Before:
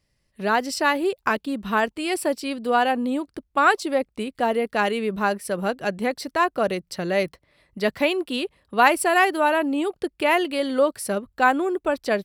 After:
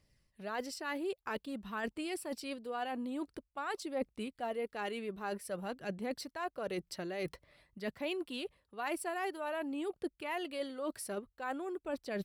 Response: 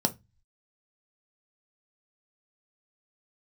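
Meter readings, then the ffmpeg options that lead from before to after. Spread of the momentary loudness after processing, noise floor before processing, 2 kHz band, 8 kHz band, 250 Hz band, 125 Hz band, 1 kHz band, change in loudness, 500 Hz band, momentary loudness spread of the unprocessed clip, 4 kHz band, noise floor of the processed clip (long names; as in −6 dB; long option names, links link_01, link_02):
4 LU, −71 dBFS, −19.0 dB, −14.0 dB, −14.5 dB, −13.5 dB, −19.0 dB, −17.0 dB, −16.0 dB, 9 LU, −15.0 dB, −81 dBFS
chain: -af "areverse,acompressor=threshold=-34dB:ratio=6,areverse,aphaser=in_gain=1:out_gain=1:delay=3.2:decay=0.3:speed=0.5:type=triangular,volume=-3dB"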